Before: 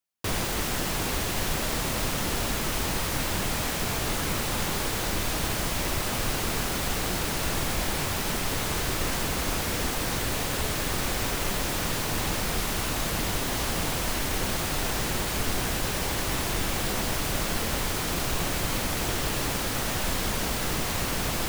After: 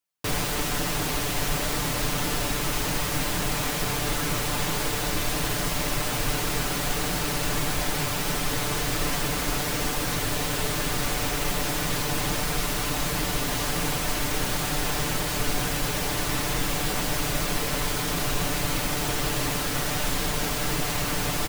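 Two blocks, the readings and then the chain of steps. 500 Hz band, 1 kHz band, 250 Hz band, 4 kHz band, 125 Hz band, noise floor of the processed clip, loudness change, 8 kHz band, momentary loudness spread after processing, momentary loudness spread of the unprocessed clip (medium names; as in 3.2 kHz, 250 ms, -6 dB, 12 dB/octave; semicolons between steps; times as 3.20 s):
+1.5 dB, +1.5 dB, +1.5 dB, +1.5 dB, +1.5 dB, -28 dBFS, +1.5 dB, +1.5 dB, 0 LU, 0 LU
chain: comb 6.8 ms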